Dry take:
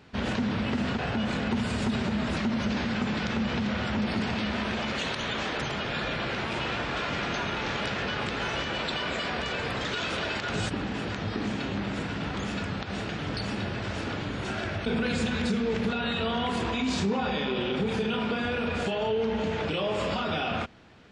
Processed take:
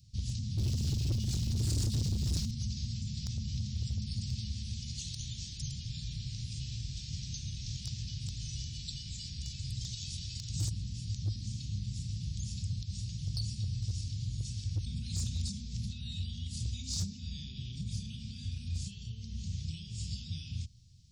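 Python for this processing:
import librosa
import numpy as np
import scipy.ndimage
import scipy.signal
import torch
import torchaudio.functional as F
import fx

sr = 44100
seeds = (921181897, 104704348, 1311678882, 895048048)

y = fx.leveller(x, sr, passes=2, at=(0.58, 2.51))
y = scipy.signal.sosfilt(scipy.signal.ellip(3, 1.0, 80, [120.0, 5200.0], 'bandstop', fs=sr, output='sos'), y)
y = np.clip(y, -10.0 ** (-30.0 / 20.0), 10.0 ** (-30.0 / 20.0))
y = F.gain(torch.from_numpy(y), 3.0).numpy()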